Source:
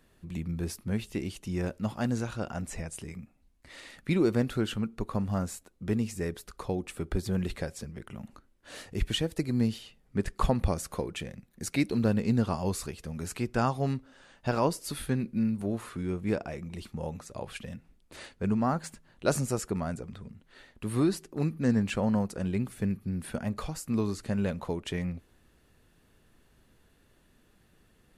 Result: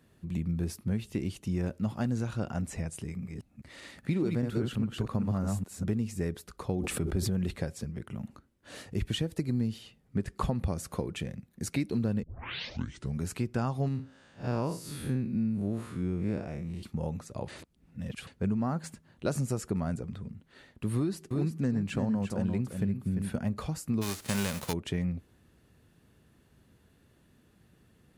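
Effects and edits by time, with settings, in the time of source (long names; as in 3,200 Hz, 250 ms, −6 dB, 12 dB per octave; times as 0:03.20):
0:03.01–0:05.99: delay that plays each chunk backwards 202 ms, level −3 dB
0:06.68–0:07.51: level that may fall only so fast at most 24 dB per second
0:12.23: tape start 0.97 s
0:13.88–0:16.83: spectrum smeared in time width 115 ms
0:17.48–0:18.27: reverse
0:20.96–0:23.38: single-tap delay 346 ms −8 dB
0:24.01–0:24.72: spectral envelope flattened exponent 0.3
whole clip: high-pass filter 88 Hz; low-shelf EQ 230 Hz +10.5 dB; downward compressor, threshold −24 dBFS; level −2 dB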